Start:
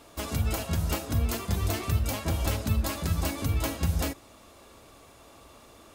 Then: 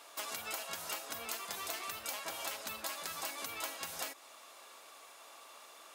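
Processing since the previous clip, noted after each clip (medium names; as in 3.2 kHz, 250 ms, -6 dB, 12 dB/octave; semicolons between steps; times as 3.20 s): high-pass 810 Hz 12 dB/octave; compression 4:1, threshold -39 dBFS, peak gain reduction 8.5 dB; trim +1 dB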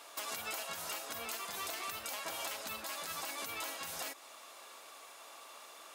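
peak limiter -31 dBFS, peak gain reduction 7.5 dB; trim +2 dB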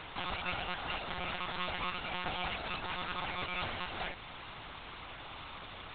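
in parallel at -11 dB: word length cut 6-bit, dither triangular; on the sum: monotone LPC vocoder at 8 kHz 180 Hz; trim +3.5 dB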